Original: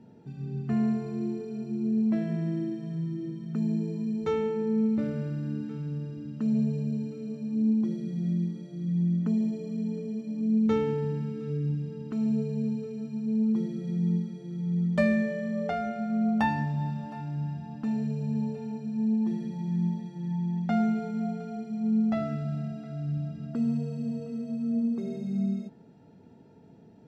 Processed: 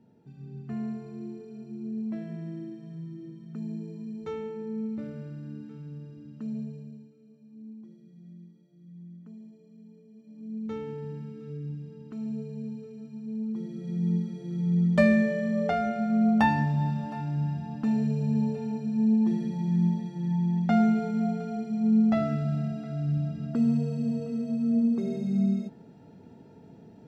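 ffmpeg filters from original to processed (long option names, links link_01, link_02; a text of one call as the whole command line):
ffmpeg -i in.wav -af "volume=16dB,afade=type=out:start_time=6.43:duration=0.69:silence=0.237137,afade=type=in:start_time=10.1:duration=1.03:silence=0.223872,afade=type=in:start_time=13.55:duration=1.04:silence=0.298538" out.wav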